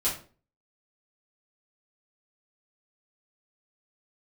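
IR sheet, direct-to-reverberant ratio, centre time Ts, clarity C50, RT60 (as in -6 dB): -9.0 dB, 29 ms, 7.0 dB, 0.40 s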